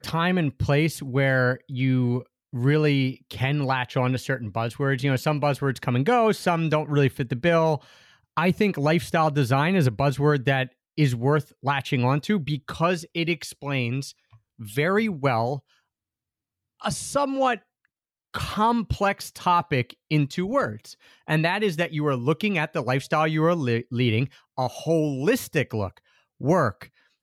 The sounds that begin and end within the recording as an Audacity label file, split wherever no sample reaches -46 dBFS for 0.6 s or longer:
16.800000	17.590000	sound